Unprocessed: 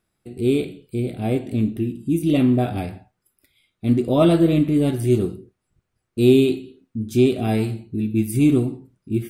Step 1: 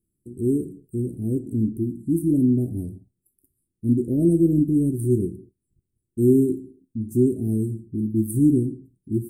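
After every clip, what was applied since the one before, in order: elliptic band-stop 350–8600 Hz, stop band 50 dB; trim -1 dB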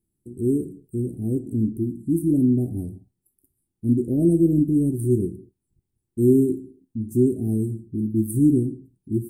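peaking EQ 830 Hz +10.5 dB 0.38 oct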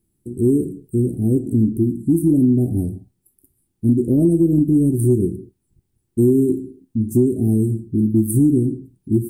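compression, threshold -20 dBFS, peak gain reduction 8.5 dB; trim +8.5 dB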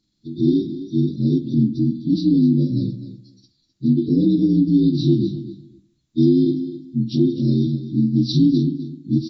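frequency axis rescaled in octaves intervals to 76%; feedback delay 256 ms, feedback 16%, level -13 dB

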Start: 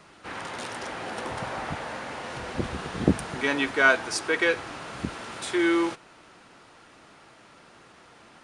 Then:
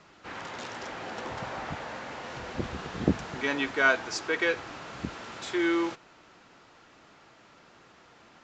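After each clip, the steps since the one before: steep low-pass 7.6 kHz 96 dB/octave; trim -3.5 dB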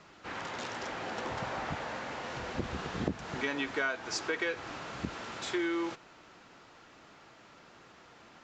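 compression 6:1, threshold -29 dBFS, peak gain reduction 11.5 dB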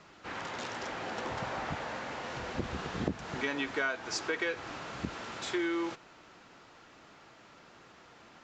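no audible change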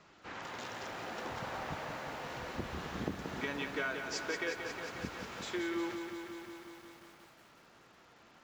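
bit-crushed delay 180 ms, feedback 80%, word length 9-bit, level -7 dB; trim -5 dB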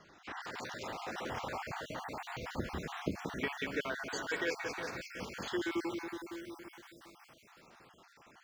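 random holes in the spectrogram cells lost 40%; trim +2.5 dB

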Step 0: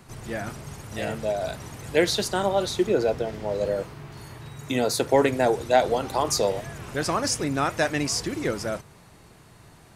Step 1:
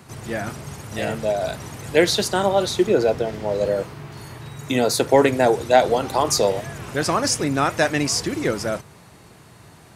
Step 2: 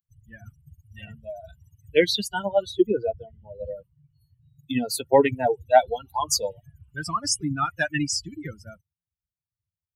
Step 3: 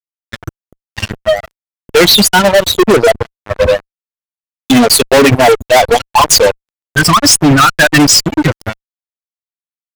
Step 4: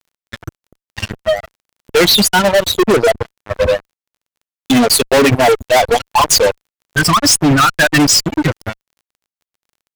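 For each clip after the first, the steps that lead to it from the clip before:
high-pass 65 Hz; trim +4.5 dB
expander on every frequency bin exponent 3; trim +2 dB
fuzz box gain 35 dB, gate -39 dBFS; trim +9 dB
crackle 20 per s -38 dBFS; trim -3.5 dB

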